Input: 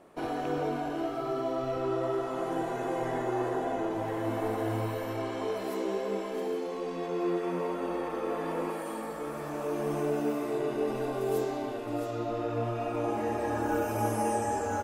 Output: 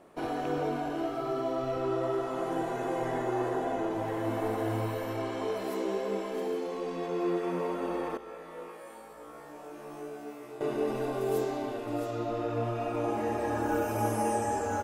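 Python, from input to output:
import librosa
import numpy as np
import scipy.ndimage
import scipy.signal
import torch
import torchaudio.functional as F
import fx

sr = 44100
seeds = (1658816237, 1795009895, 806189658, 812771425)

y = fx.comb_fb(x, sr, f0_hz=61.0, decay_s=0.44, harmonics='all', damping=0.0, mix_pct=100, at=(8.17, 10.61))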